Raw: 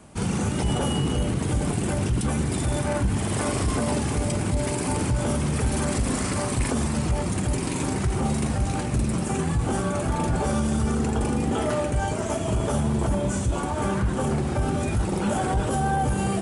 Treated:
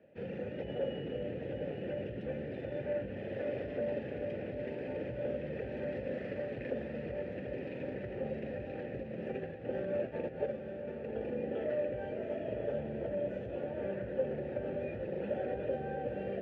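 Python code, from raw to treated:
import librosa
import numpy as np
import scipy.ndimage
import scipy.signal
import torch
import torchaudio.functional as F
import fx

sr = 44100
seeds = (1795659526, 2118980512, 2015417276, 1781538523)

y = scipy.signal.sosfilt(scipy.signal.butter(2, 60.0, 'highpass', fs=sr, output='sos'), x)
y = fx.low_shelf(y, sr, hz=230.0, db=10.5)
y = fx.over_compress(y, sr, threshold_db=-20.0, ratio=-0.5, at=(9.03, 11.14))
y = fx.vowel_filter(y, sr, vowel='e')
y = fx.air_absorb(y, sr, metres=330.0)
y = fx.echo_diffused(y, sr, ms=834, feedback_pct=43, wet_db=-8)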